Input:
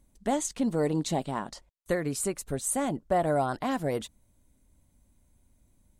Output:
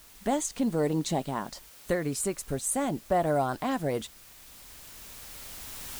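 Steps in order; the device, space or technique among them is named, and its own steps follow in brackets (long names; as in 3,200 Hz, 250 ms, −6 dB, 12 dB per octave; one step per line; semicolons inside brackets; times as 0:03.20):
cheap recorder with automatic gain (white noise bed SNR 23 dB; camcorder AGC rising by 7 dB per second)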